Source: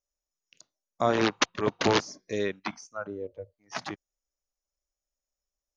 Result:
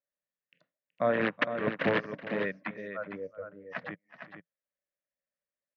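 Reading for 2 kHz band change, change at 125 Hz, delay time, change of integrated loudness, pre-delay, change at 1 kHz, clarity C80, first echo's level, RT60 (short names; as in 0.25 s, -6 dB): +0.5 dB, -4.0 dB, 0.375 s, -3.0 dB, none, -5.5 dB, none, -17.0 dB, none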